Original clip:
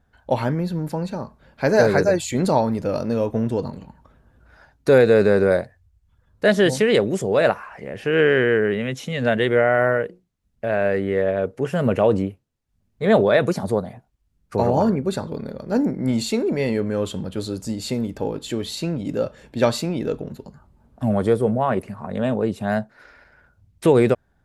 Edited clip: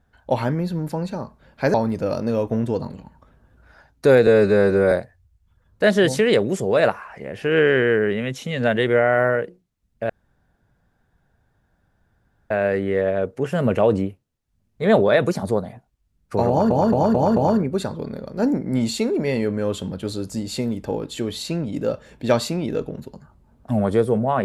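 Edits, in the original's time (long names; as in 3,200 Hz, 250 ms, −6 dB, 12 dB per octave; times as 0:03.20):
0:01.74–0:02.57: remove
0:05.10–0:05.53: time-stretch 1.5×
0:10.71: splice in room tone 2.41 s
0:14.69: stutter 0.22 s, 5 plays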